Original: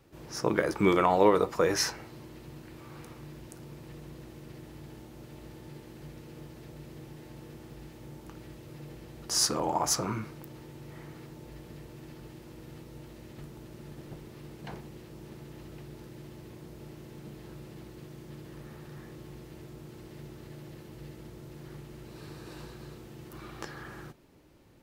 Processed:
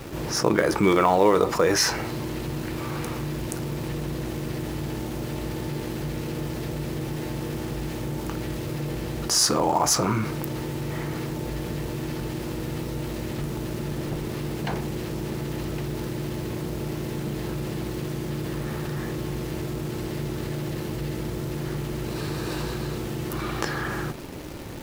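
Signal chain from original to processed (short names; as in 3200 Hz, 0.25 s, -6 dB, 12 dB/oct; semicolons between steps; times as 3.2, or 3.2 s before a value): in parallel at -11 dB: companded quantiser 4-bit; on the sum: fast leveller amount 50%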